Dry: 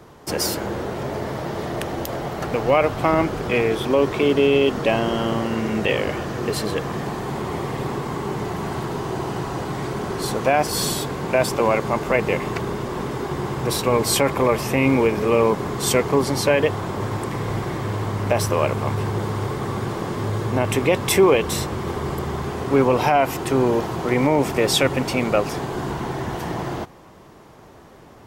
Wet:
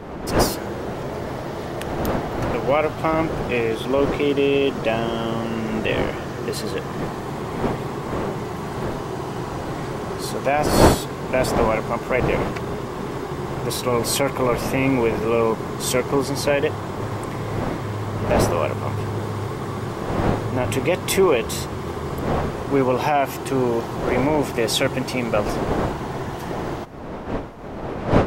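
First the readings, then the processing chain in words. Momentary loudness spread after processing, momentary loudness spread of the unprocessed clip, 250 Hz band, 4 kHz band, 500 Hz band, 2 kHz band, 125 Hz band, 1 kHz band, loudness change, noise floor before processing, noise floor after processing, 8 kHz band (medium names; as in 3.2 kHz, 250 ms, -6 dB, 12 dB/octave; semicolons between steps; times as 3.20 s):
10 LU, 9 LU, -0.5 dB, -2.0 dB, -1.0 dB, -1.0 dB, -0.5 dB, -0.5 dB, -1.0 dB, -45 dBFS, -30 dBFS, -2.0 dB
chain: wind noise 600 Hz -26 dBFS; trim -2 dB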